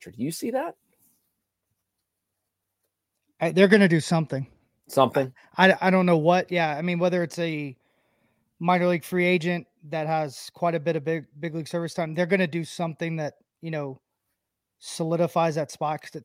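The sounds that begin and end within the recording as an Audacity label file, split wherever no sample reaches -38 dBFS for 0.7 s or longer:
3.410000	7.720000	sound
8.610000	13.940000	sound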